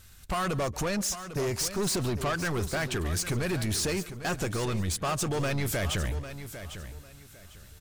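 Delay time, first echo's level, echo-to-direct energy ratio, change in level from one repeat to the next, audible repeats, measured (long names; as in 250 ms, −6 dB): 141 ms, −20.5 dB, −10.5 dB, repeats not evenly spaced, 4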